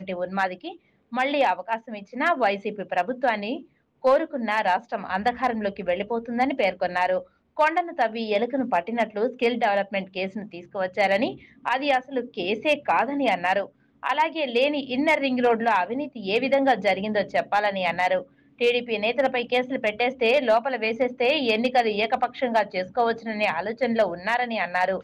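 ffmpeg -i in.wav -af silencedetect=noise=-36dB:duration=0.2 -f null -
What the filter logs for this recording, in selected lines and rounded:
silence_start: 0.73
silence_end: 1.13 | silence_duration: 0.39
silence_start: 3.62
silence_end: 4.04 | silence_duration: 0.42
silence_start: 7.22
silence_end: 7.57 | silence_duration: 0.35
silence_start: 11.35
silence_end: 11.66 | silence_duration: 0.30
silence_start: 13.66
silence_end: 14.03 | silence_duration: 0.38
silence_start: 18.23
silence_end: 18.61 | silence_duration: 0.38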